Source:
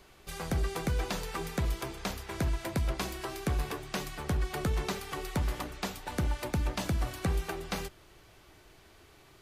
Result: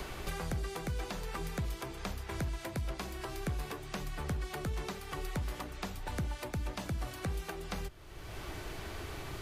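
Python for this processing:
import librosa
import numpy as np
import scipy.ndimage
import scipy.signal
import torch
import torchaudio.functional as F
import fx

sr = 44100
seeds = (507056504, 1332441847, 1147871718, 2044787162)

y = fx.band_squash(x, sr, depth_pct=100)
y = y * librosa.db_to_amplitude(-6.0)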